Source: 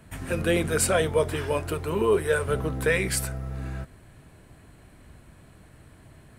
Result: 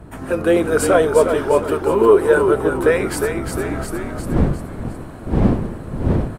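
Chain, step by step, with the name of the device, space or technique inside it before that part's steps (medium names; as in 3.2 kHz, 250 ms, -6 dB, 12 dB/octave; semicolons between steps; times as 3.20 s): high-order bell 600 Hz +10.5 dB 2.9 oct; frequency-shifting echo 355 ms, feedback 45%, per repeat -44 Hz, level -6.5 dB; smartphone video outdoors (wind noise 230 Hz -32 dBFS; level rider gain up to 10 dB; trim -1 dB; AAC 96 kbps 44.1 kHz)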